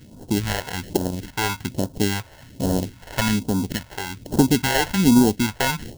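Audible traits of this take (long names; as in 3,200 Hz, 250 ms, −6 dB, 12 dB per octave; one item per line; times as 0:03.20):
aliases and images of a low sample rate 1,200 Hz, jitter 0%
phaser sweep stages 2, 1.2 Hz, lowest notch 220–2,100 Hz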